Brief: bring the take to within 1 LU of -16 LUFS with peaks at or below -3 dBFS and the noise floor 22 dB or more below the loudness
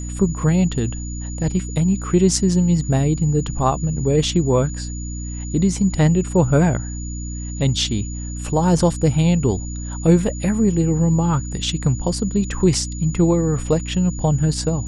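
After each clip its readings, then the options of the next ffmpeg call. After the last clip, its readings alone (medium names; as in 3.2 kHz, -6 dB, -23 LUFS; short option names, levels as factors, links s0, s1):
hum 60 Hz; highest harmonic 300 Hz; hum level -26 dBFS; steady tone 6.9 kHz; tone level -35 dBFS; loudness -19.5 LUFS; peak level -2.0 dBFS; loudness target -16.0 LUFS
-> -af "bandreject=f=60:t=h:w=6,bandreject=f=120:t=h:w=6,bandreject=f=180:t=h:w=6,bandreject=f=240:t=h:w=6,bandreject=f=300:t=h:w=6"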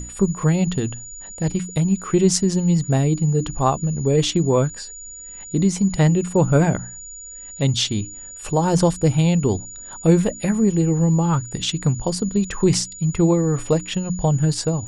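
hum not found; steady tone 6.9 kHz; tone level -35 dBFS
-> -af "bandreject=f=6900:w=30"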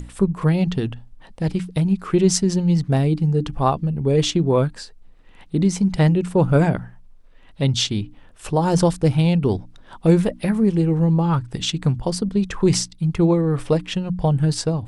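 steady tone not found; loudness -20.0 LUFS; peak level -2.5 dBFS; loudness target -16.0 LUFS
-> -af "volume=1.58,alimiter=limit=0.708:level=0:latency=1"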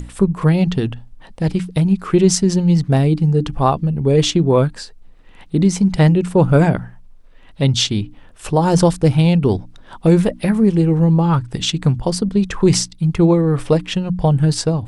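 loudness -16.0 LUFS; peak level -3.0 dBFS; noise floor -43 dBFS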